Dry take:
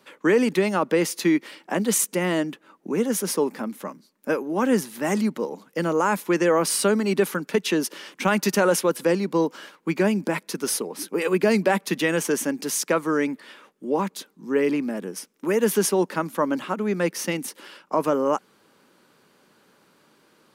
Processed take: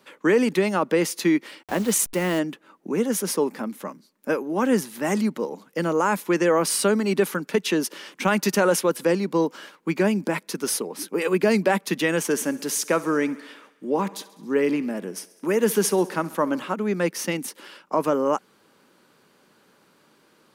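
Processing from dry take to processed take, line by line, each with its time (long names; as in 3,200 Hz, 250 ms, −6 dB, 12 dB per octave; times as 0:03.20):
0:01.63–0:02.39: hold until the input has moved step −33.5 dBFS
0:12.23–0:16.74: feedback echo with a high-pass in the loop 67 ms, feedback 70%, high-pass 190 Hz, level −19.5 dB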